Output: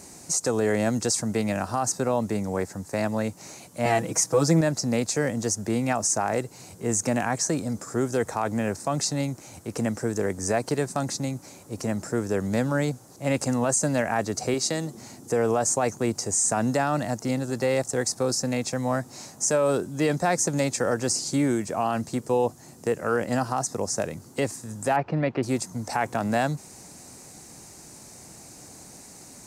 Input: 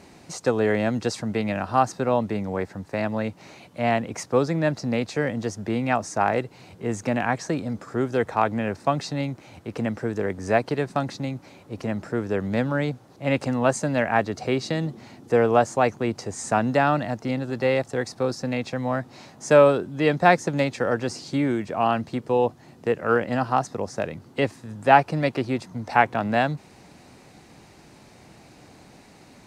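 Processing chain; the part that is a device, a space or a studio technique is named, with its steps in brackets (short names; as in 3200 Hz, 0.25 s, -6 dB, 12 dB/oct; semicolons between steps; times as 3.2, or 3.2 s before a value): 14.54–14.95 HPF 260 Hz 6 dB/oct; over-bright horn tweeter (resonant high shelf 4900 Hz +14 dB, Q 1.5; limiter -14 dBFS, peak gain reduction 11 dB); 3.85–4.61 comb 6.2 ms, depth 100%; 24.96–25.43 LPF 3000 Hz 24 dB/oct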